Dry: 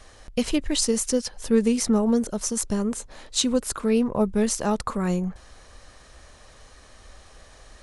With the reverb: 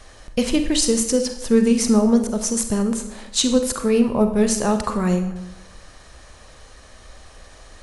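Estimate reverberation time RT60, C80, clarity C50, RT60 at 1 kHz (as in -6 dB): 0.80 s, 11.5 dB, 8.5 dB, 0.80 s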